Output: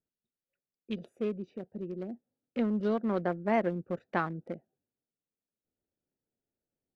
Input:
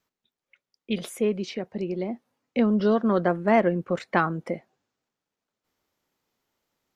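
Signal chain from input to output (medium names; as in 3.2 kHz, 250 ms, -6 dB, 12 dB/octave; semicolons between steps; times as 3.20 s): local Wiener filter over 41 samples; trim -7.5 dB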